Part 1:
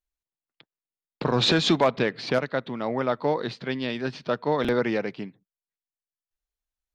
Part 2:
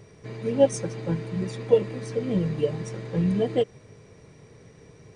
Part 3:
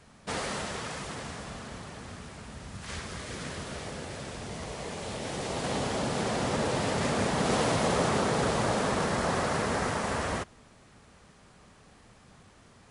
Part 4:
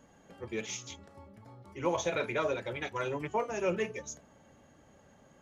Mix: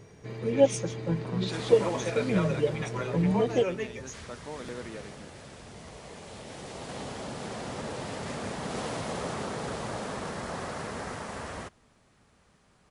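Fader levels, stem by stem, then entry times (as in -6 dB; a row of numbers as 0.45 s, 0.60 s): -16.5 dB, -2.0 dB, -7.5 dB, -1.5 dB; 0.00 s, 0.00 s, 1.25 s, 0.00 s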